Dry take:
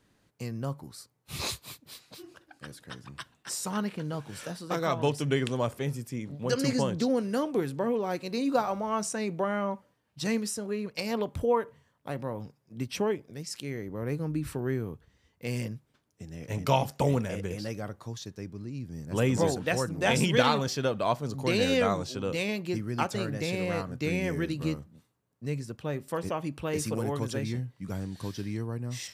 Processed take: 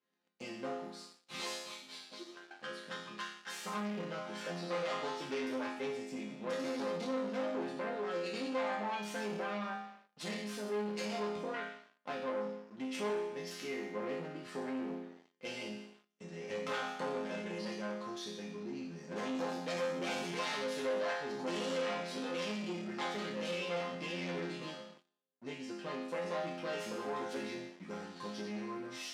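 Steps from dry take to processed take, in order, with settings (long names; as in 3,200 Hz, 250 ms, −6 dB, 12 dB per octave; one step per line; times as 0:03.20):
phase distortion by the signal itself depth 0.63 ms
downward compressor 4 to 1, threshold −33 dBFS, peak gain reduction 12.5 dB
resonators tuned to a chord F3 minor, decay 0.82 s
leveller curve on the samples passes 3
band-pass filter 280–5,300 Hz
level +13 dB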